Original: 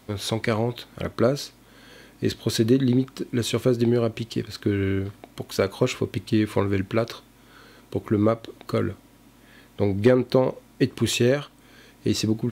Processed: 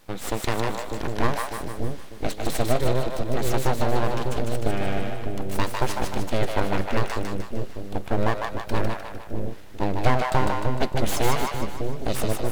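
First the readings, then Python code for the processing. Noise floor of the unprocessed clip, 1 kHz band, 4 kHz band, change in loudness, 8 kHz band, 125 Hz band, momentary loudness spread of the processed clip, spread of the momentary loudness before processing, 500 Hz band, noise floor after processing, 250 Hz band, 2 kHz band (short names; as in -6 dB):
-54 dBFS, +8.5 dB, -3.0 dB, -3.0 dB, +0.5 dB, -1.5 dB, 9 LU, 11 LU, -3.0 dB, -35 dBFS, -6.0 dB, +2.5 dB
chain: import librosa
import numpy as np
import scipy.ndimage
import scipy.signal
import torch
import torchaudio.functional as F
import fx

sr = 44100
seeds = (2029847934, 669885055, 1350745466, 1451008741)

y = np.abs(x)
y = fx.echo_split(y, sr, split_hz=560.0, low_ms=598, high_ms=152, feedback_pct=52, wet_db=-3.0)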